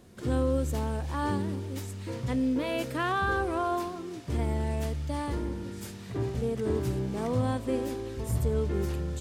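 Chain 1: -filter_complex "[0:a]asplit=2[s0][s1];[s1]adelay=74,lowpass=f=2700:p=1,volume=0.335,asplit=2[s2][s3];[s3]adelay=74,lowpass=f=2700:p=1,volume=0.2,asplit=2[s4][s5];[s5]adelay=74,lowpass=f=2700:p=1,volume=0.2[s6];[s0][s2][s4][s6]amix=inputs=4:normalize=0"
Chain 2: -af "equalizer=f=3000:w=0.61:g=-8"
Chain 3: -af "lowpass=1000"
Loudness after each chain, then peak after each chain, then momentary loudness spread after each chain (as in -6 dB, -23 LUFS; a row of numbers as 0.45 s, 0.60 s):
-30.5 LUFS, -31.5 LUFS, -31.5 LUFS; -16.0 dBFS, -16.5 dBFS, -16.5 dBFS; 8 LU, 8 LU, 8 LU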